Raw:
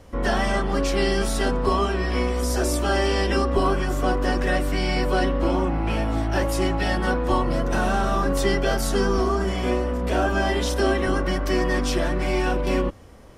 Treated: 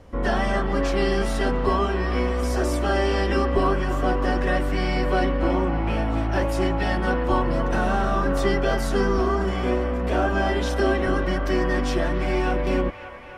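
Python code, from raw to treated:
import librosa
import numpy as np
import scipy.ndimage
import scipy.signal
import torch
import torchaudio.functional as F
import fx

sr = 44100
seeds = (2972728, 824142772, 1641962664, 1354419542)

p1 = fx.high_shelf(x, sr, hz=4600.0, db=-10.0)
y = p1 + fx.echo_wet_bandpass(p1, sr, ms=280, feedback_pct=72, hz=1500.0, wet_db=-10, dry=0)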